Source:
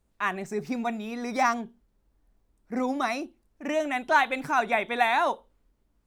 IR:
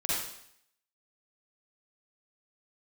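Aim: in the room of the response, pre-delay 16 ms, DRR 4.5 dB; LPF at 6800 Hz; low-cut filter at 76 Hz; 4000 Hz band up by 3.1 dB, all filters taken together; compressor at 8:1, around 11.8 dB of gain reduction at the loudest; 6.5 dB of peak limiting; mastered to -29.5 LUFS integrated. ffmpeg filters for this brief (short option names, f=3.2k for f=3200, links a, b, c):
-filter_complex "[0:a]highpass=76,lowpass=6.8k,equalizer=f=4k:t=o:g=4,acompressor=threshold=-29dB:ratio=8,alimiter=level_in=1.5dB:limit=-24dB:level=0:latency=1,volume=-1.5dB,asplit=2[a][b];[1:a]atrim=start_sample=2205,adelay=16[c];[b][c]afir=irnorm=-1:irlink=0,volume=-12dB[d];[a][d]amix=inputs=2:normalize=0,volume=5.5dB"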